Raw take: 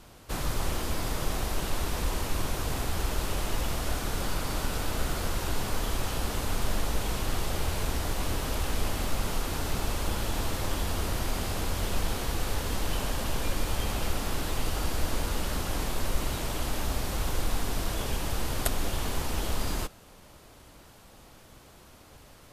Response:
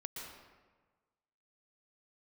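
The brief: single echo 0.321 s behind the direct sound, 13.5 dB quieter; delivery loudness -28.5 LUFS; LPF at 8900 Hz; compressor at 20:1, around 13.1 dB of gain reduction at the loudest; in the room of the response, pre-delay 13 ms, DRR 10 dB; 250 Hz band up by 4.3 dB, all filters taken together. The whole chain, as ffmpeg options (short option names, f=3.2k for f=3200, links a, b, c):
-filter_complex "[0:a]lowpass=8.9k,equalizer=f=250:t=o:g=5.5,acompressor=threshold=-34dB:ratio=20,aecho=1:1:321:0.211,asplit=2[a][b];[1:a]atrim=start_sample=2205,adelay=13[c];[b][c]afir=irnorm=-1:irlink=0,volume=-8.5dB[d];[a][d]amix=inputs=2:normalize=0,volume=13dB"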